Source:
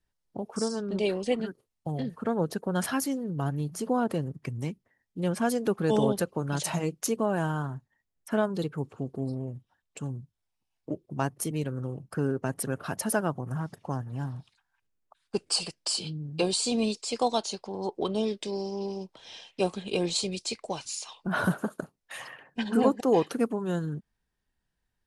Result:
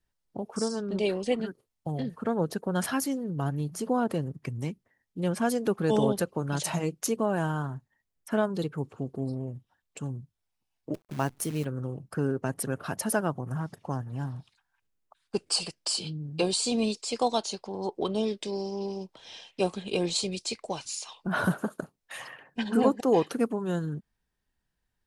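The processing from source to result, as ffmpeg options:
ffmpeg -i in.wav -filter_complex "[0:a]asettb=1/sr,asplit=3[link_01][link_02][link_03];[link_01]atrim=end=10.944[link_04];[link_02]atrim=start=10.94:end=11.65,asetpts=PTS-STARTPTS,afade=type=in:duration=0.004:curve=qsin,afade=type=out:start_time=0.706:duration=0.004:curve=qsin,acrusher=bits=8:dc=4:mix=0:aa=0.000001[link_05];[link_03]atrim=start=11.646[link_06];[link_04][link_05]acrossfade=duration=0.004:curve1=hsin:curve2=qsin[link_07];[link_07][link_06]acrossfade=duration=0.004:curve1=qsin:curve2=hsin" out.wav

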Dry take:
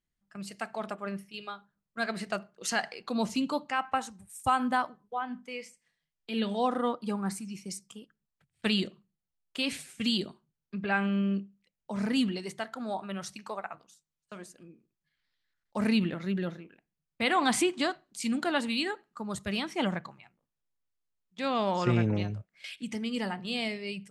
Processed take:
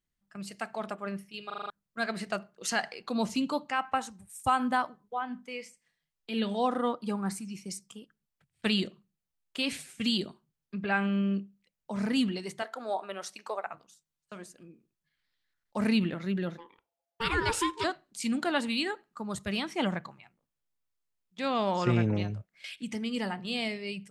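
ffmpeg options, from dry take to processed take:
ffmpeg -i in.wav -filter_complex "[0:a]asettb=1/sr,asplit=3[link_01][link_02][link_03];[link_01]atrim=end=12.624[link_04];[link_02]atrim=start=12.62:end=13.67,asetpts=PTS-STARTPTS,afade=type=in:duration=0.004:curve=qsin,afade=type=out:start_time=1.046:duration=0.004:curve=qsin,highpass=frequency=450:width_type=q:width=1.5[link_05];[link_03]atrim=start=13.666[link_06];[link_04][link_05]acrossfade=duration=0.004:curve1=hsin:curve2=qsin[link_07];[link_07][link_06]acrossfade=duration=0.004:curve1=qsin:curve2=hsin,asplit=3[link_08][link_09][link_10];[link_08]afade=type=out:start_time=16.57:duration=0.02[link_11];[link_09]aeval=exprs='val(0)*sin(2*PI*680*n/s)':channel_layout=same,afade=type=in:start_time=16.57:duration=0.02,afade=type=out:start_time=17.83:duration=0.02[link_12];[link_10]afade=type=in:start_time=17.83:duration=0.02[link_13];[link_11][link_12][link_13]amix=inputs=3:normalize=0,asplit=7[link_14][link_15][link_16][link_17][link_18][link_19][link_20];[link_14]atrim=end=1.502[link_21];[link_15]atrim=start=1.458:end=1.502[link_22];[link_16]atrim=start=1.458:end=1.502[link_23];[link_17]atrim=start=1.458:end=1.502[link_24];[link_18]atrim=start=1.458:end=1.502[link_25];[link_19]atrim=start=1.458:end=1.502[link_26];[link_20]atrim=start=1.698[link_27];[link_21][link_22]acrossfade=duration=0.004:curve1=hsin:curve2=hsin[link_28];[link_28][link_23]acrossfade=duration=0.004:curve1=hsin:curve2=hsin[link_29];[link_29][link_24]acrossfade=duration=0.004:curve1=hsin:curve2=hsin[link_30];[link_30][link_25]acrossfade=duration=0.004:curve1=hsin:curve2=hsin[link_31];[link_31][link_26]acrossfade=duration=0.004:curve1=hsin:curve2=hsin[link_32];[link_32][link_27]acrossfade=duration=0.004:curve1=hsin:curve2=hsin" out.wav

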